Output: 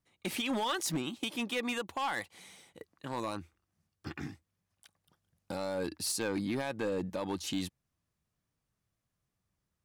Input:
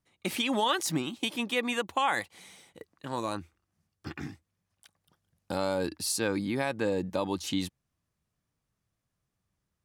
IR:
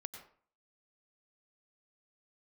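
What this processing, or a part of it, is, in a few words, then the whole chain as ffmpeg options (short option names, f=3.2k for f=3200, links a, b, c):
limiter into clipper: -af "alimiter=limit=-20dB:level=0:latency=1:release=122,asoftclip=type=hard:threshold=-25.5dB,volume=-2dB"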